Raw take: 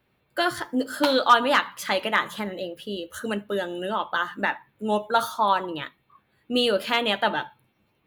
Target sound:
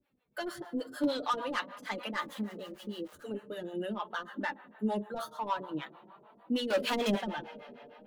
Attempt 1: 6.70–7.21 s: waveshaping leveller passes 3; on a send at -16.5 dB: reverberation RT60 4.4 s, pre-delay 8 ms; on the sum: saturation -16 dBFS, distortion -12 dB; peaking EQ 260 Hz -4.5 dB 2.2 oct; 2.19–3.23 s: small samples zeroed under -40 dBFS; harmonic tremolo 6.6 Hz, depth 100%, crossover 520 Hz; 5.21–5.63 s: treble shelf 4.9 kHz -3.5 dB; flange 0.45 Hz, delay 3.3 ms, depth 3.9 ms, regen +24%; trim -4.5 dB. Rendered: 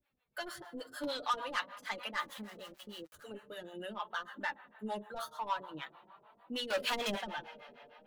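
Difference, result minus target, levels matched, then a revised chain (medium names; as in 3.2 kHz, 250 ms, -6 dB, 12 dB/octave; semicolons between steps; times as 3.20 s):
250 Hz band -7.0 dB
6.70–7.21 s: waveshaping leveller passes 3; on a send at -16.5 dB: reverberation RT60 4.4 s, pre-delay 8 ms; on the sum: saturation -16 dBFS, distortion -12 dB; peaking EQ 260 Hz +7 dB 2.2 oct; 2.19–3.23 s: small samples zeroed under -40 dBFS; harmonic tremolo 6.6 Hz, depth 100%, crossover 520 Hz; 5.21–5.63 s: treble shelf 4.9 kHz -3.5 dB; flange 0.45 Hz, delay 3.3 ms, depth 3.9 ms, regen +24%; trim -4.5 dB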